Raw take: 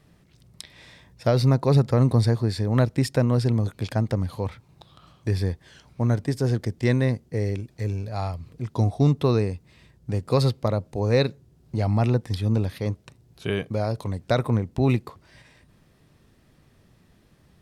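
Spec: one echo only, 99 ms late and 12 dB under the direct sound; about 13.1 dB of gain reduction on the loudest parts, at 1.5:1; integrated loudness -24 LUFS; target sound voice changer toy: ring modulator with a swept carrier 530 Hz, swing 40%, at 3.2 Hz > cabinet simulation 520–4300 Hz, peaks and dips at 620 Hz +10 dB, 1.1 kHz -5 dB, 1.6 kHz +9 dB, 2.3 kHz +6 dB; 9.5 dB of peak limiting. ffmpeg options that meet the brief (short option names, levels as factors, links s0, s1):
-af "acompressor=threshold=0.00224:ratio=1.5,alimiter=level_in=1.78:limit=0.0631:level=0:latency=1,volume=0.562,aecho=1:1:99:0.251,aeval=exprs='val(0)*sin(2*PI*530*n/s+530*0.4/3.2*sin(2*PI*3.2*n/s))':c=same,highpass=520,equalizer=f=620:t=q:w=4:g=10,equalizer=f=1100:t=q:w=4:g=-5,equalizer=f=1600:t=q:w=4:g=9,equalizer=f=2300:t=q:w=4:g=6,lowpass=f=4300:w=0.5412,lowpass=f=4300:w=1.3066,volume=6.68"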